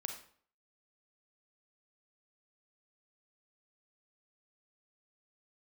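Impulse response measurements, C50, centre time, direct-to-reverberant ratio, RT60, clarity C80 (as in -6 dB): 6.5 dB, 21 ms, 4.0 dB, 0.55 s, 10.5 dB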